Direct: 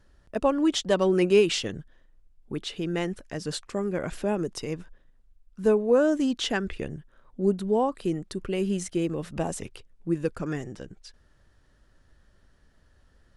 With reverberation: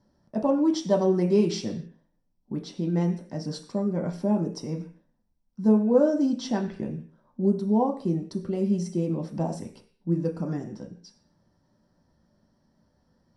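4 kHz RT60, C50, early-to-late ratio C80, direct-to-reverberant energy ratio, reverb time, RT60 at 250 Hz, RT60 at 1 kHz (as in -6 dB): no reading, 11.0 dB, 15.5 dB, 1.5 dB, 0.45 s, 0.55 s, 0.45 s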